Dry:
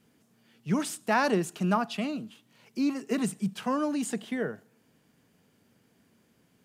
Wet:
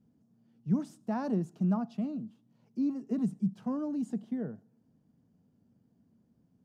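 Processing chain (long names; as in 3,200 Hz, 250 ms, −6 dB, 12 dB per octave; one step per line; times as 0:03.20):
drawn EQ curve 240 Hz 0 dB, 400 Hz −10 dB, 720 Hz −9 dB, 2,300 Hz −25 dB, 3,300 Hz −23 dB, 5,600 Hz −18 dB, 8,700 Hz −24 dB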